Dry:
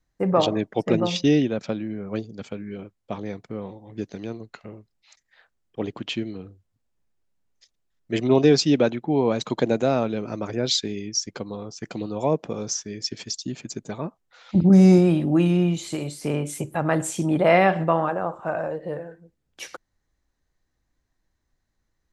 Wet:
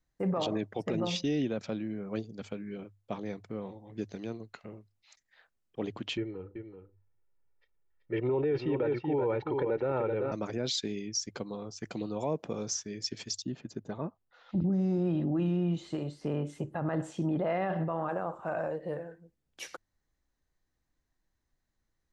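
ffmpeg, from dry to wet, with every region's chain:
-filter_complex "[0:a]asettb=1/sr,asplit=3[s0][s1][s2];[s0]atrim=end=6.174[s3];[s1]atrim=start=6.17:end=10.32,asetpts=PTS-STARTPTS,afade=t=in:d=0.004:c=qsin,afade=t=out:st=4.146:d=0.004:c=qsin,lowpass=f=2300:w=0.5412,lowpass=f=2300:w=1.3066,aecho=1:1:2.2:0.74,atrim=end_sample=183015,aecho=1:1:382:0.376,atrim=end_sample=183015[s4];[s2]atrim=start=10.316[s5];[s3][s4]acrossfade=d=0.004:c1=hsin:c2=qsin[s6];[s6][s5]acrossfade=d=0.004:c1=qsin:c2=hsin,asettb=1/sr,asplit=3[s7][s8][s9];[s7]atrim=end=13.424[s10];[s8]atrim=start=13.42:end=18.09,asetpts=PTS-STARTPTS,afade=t=in:d=0.004:c=qsin,afade=t=out:st=4.666:d=0.004:c=qsin,lowpass=4700,highshelf=f=2500:g=-8,bandreject=f=2300:w=7.2[s11];[s9]atrim=start=18.086[s12];[s10][s11]acrossfade=d=0.004:c1=hsin:c2=qsin[s13];[s13][s12]acrossfade=d=0.004:c1=qsin:c2=hsin,bandreject=f=50:t=h:w=6,bandreject=f=100:t=h:w=6,alimiter=limit=0.141:level=0:latency=1:release=21,volume=0.531"

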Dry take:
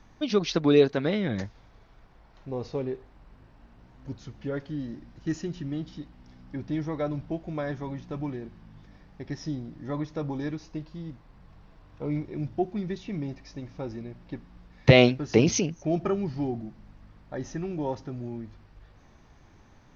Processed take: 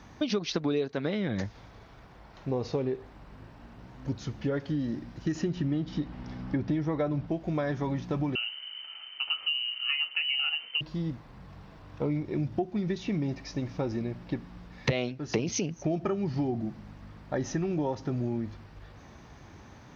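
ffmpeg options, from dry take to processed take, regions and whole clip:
-filter_complex "[0:a]asettb=1/sr,asplit=3[s0][s1][s2];[s0]atrim=end=5.354[s3];[s1]atrim=start=5.35:end=7.27,asetpts=PTS-STARTPTS,afade=t=in:d=0.004:c=qsin,afade=t=out:st=1.916:d=0.004:c=qsin,lowpass=f=3100:p=1,acontrast=50[s4];[s2]atrim=start=7.266[s5];[s3][s4]acrossfade=d=0.004:c1=hsin:c2=qsin[s6];[s6][s5]acrossfade=d=0.004:c1=qsin:c2=hsin,asettb=1/sr,asplit=3[s7][s8][s9];[s7]atrim=end=8.354[s10];[s8]atrim=start=8.35:end=10.81,asetpts=PTS-STARTPTS,afade=t=in:d=0.004:c=qsin,afade=t=out:st=2.456:d=0.004:c=qsin,lowpass=f=2600:t=q:w=0.5098,lowpass=f=2600:t=q:w=0.6013,lowpass=f=2600:t=q:w=0.9,lowpass=f=2600:t=q:w=2.563,afreqshift=-3100,asplit=2[s11][s12];[s12]adelay=29,volume=0.237[s13];[s11][s13]amix=inputs=2:normalize=0,atrim=end_sample=108486[s14];[s9]atrim=start=10.806[s15];[s10][s14]acrossfade=d=0.004:c1=hsin:c2=qsin[s16];[s16][s15]acrossfade=d=0.004:c1=qsin:c2=hsin,highpass=58,acompressor=threshold=0.0224:ratio=8,volume=2.24"

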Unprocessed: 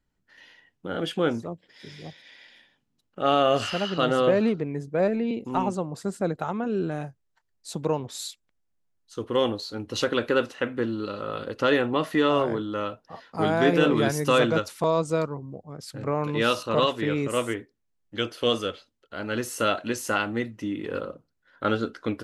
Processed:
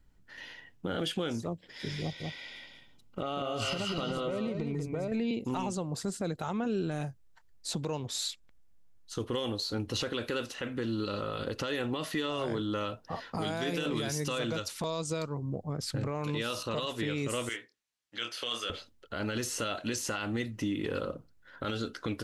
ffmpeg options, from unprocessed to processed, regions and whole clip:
-filter_complex "[0:a]asettb=1/sr,asplit=3[s0][s1][s2];[s0]atrim=end=2.014[s3];[s1]atrim=start=2.01:end=5.12,asetpts=PTS-STARTPTS,afade=t=in:d=0.004:c=qsin,afade=t=out:st=3.106:d=0.004:c=qsin,acompressor=threshold=0.0251:ratio=12:attack=3.2:release=140:knee=1:detection=peak,asuperstop=centerf=1700:order=20:qfactor=6.7,aecho=1:1:192:0.531,atrim=end_sample=137151[s4];[s2]atrim=start=5.116[s5];[s3][s4]acrossfade=d=0.004:c1=hsin:c2=qsin[s6];[s6][s5]acrossfade=d=0.004:c1=qsin:c2=hsin,asettb=1/sr,asplit=3[s7][s8][s9];[s7]atrim=end=17.494[s10];[s8]atrim=start=17.49:end=18.7,asetpts=PTS-STARTPTS,afade=t=in:d=0.004:c=qsin,afade=t=out:st=1.206:d=0.004:c=qsin,bandpass=f=4100:t=q:w=0.58,asplit=2[s11][s12];[s12]adelay=26,volume=0.501[s13];[s11][s13]amix=inputs=2:normalize=0,atrim=end_sample=53361[s14];[s9]atrim=start=18.696[s15];[s10][s14]acrossfade=d=0.004:c1=hsin:c2=qsin[s16];[s16][s15]acrossfade=d=0.004:c1=qsin:c2=hsin,lowshelf=f=94:g=11.5,acrossover=split=2900|7300[s17][s18][s19];[s17]acompressor=threshold=0.0158:ratio=4[s20];[s18]acompressor=threshold=0.01:ratio=4[s21];[s19]acompressor=threshold=0.00224:ratio=4[s22];[s20][s21][s22]amix=inputs=3:normalize=0,alimiter=level_in=1.68:limit=0.0631:level=0:latency=1:release=25,volume=0.596,volume=1.88"

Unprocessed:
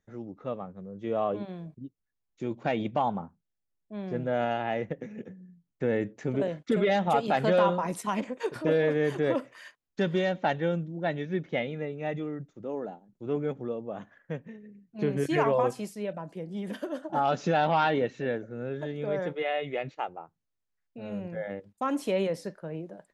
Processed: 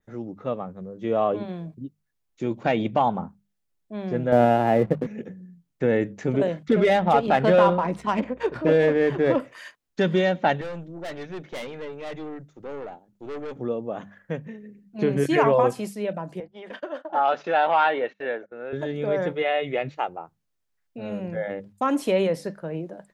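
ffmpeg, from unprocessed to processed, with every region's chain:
-filter_complex "[0:a]asettb=1/sr,asplit=3[s0][s1][s2];[s0]atrim=end=4.324[s3];[s1]atrim=start=4.32:end=5.07,asetpts=PTS-STARTPTS,afade=t=in:d=0.004:c=qsin,afade=t=out:st=0.746:d=0.004:c=qsin,highpass=f=42:w=0.5412,highpass=f=42:w=1.3066,tiltshelf=f=1400:g=8,aeval=exprs='sgn(val(0))*max(abs(val(0))-0.00473,0)':c=same[s4];[s2]atrim=start=5.066[s5];[s3][s4]acrossfade=d=0.004:c1=hsin:c2=qsin[s6];[s6][s5]acrossfade=d=0.004:c1=qsin:c2=hsin,asettb=1/sr,asplit=3[s7][s8][s9];[s7]atrim=end=6.684[s10];[s8]atrim=start=6.68:end=9.4,asetpts=PTS-STARTPTS,afade=t=in:d=0.004:c=qsin,afade=t=out:st=2.716:d=0.004:c=qsin,adynamicsmooth=sensitivity=4.5:basefreq=2600,aeval=exprs='val(0)+0.00126*(sin(2*PI*60*n/s)+sin(2*PI*2*60*n/s)/2+sin(2*PI*3*60*n/s)/3+sin(2*PI*4*60*n/s)/4+sin(2*PI*5*60*n/s)/5)':c=same[s11];[s9]atrim=start=9.396[s12];[s10][s11]acrossfade=d=0.004:c1=hsin:c2=qsin[s13];[s13][s12]acrossfade=d=0.004:c1=qsin:c2=hsin,asettb=1/sr,asplit=3[s14][s15][s16];[s14]atrim=end=10.614[s17];[s15]atrim=start=10.61:end=13.56,asetpts=PTS-STARTPTS,afade=t=in:d=0.004:c=qsin,afade=t=out:st=2.946:d=0.004:c=qsin,equalizer=f=170:t=o:w=1.3:g=-7,aeval=exprs='(tanh(70.8*val(0)+0.35)-tanh(0.35))/70.8':c=same[s18];[s16]atrim=start=13.556[s19];[s17][s18]acrossfade=d=0.004:c1=hsin:c2=qsin[s20];[s20][s19]acrossfade=d=0.004:c1=qsin:c2=hsin,asettb=1/sr,asplit=3[s21][s22][s23];[s21]atrim=end=16.404[s24];[s22]atrim=start=16.4:end=18.73,asetpts=PTS-STARTPTS,afade=t=in:d=0.004:c=qsin,afade=t=out:st=2.326:d=0.004:c=qsin,highpass=540,lowpass=3000,agate=range=0.0562:threshold=0.00316:ratio=16:release=100:detection=peak[s25];[s23]atrim=start=18.726[s26];[s24][s25]acrossfade=d=0.004:c1=hsin:c2=qsin[s27];[s27][s26]acrossfade=d=0.004:c1=qsin:c2=hsin,bandreject=f=50:t=h:w=6,bandreject=f=100:t=h:w=6,bandreject=f=150:t=h:w=6,bandreject=f=200:t=h:w=6,adynamicequalizer=threshold=0.00224:dfrequency=6100:dqfactor=1.1:tfrequency=6100:tqfactor=1.1:attack=5:release=100:ratio=0.375:range=2:mode=cutabove:tftype=bell,volume=2"

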